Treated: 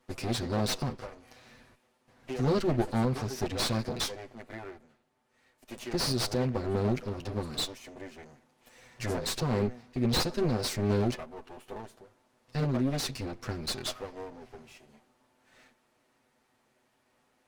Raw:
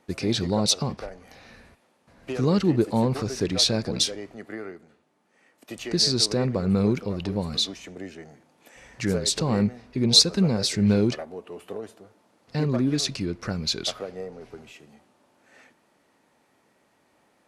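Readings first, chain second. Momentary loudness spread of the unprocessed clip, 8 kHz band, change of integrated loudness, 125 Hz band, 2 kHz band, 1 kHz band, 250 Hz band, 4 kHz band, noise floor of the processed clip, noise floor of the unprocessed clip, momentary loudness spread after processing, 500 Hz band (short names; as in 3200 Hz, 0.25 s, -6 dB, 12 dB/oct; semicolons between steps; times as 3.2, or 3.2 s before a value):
18 LU, -10.5 dB, -7.5 dB, -5.0 dB, -3.0 dB, -1.5 dB, -7.5 dB, -11.0 dB, -72 dBFS, -66 dBFS, 17 LU, -5.0 dB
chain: minimum comb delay 8 ms; slew limiter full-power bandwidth 300 Hz; gain -4.5 dB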